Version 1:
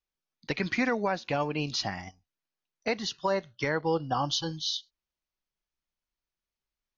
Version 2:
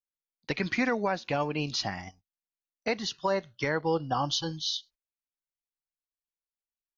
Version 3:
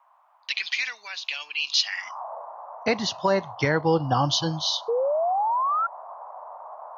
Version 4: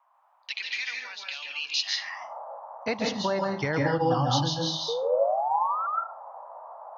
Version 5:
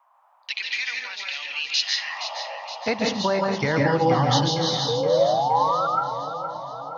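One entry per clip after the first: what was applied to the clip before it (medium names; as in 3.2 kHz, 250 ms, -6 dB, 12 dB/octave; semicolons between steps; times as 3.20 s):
gate -54 dBFS, range -17 dB
painted sound rise, 4.88–5.87 s, 450–1400 Hz -29 dBFS; band noise 600–1100 Hz -46 dBFS; high-pass sweep 3 kHz -> 95 Hz, 1.83–2.87 s; trim +5.5 dB
reverberation RT60 0.35 s, pre-delay 138 ms, DRR 0 dB; trim -6 dB
two-band feedback delay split 550 Hz, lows 612 ms, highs 469 ms, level -9.5 dB; trim +4.5 dB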